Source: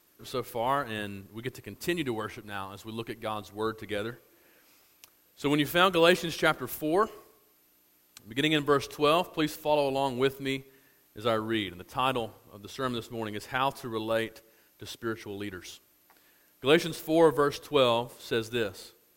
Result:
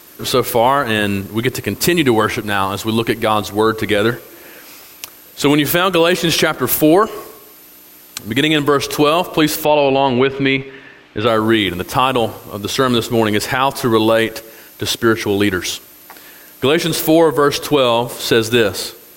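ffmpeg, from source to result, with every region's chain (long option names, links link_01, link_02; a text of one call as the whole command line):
ffmpeg -i in.wav -filter_complex "[0:a]asettb=1/sr,asplit=3[link_01][link_02][link_03];[link_01]atrim=end=9.654[link_04];[link_02]atrim=start=9.65:end=11.27,asetpts=PTS-STARTPTS,afade=type=in:duration=0.004:curve=qsin,afade=type=out:start_time=1.616:duration=0.004:curve=qsin,acompressor=threshold=-35dB:ratio=2:attack=3.2:release=140:knee=1:detection=peak,lowpass=frequency=2700:width_type=q:width=1.5[link_05];[link_03]atrim=start=11.266[link_06];[link_04][link_05]acrossfade=duration=0.004:curve1=hsin:curve2=qsin[link_07];[link_07][link_06]acrossfade=duration=0.004:curve1=qsin:curve2=hsin,lowshelf=frequency=80:gain=-6,acompressor=threshold=-30dB:ratio=5,alimiter=level_in=24dB:limit=-1dB:release=50:level=0:latency=1,volume=-1dB" out.wav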